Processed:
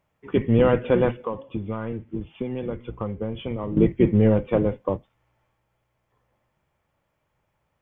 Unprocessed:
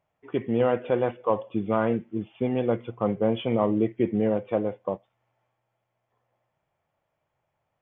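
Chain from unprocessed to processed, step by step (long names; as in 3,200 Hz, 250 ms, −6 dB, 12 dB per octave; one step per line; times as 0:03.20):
sub-octave generator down 1 octave, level −2 dB
parametric band 700 Hz −7.5 dB 0.42 octaves
0:01.12–0:03.77: downward compressor, threshold −32 dBFS, peak gain reduction 13.5 dB
level +5.5 dB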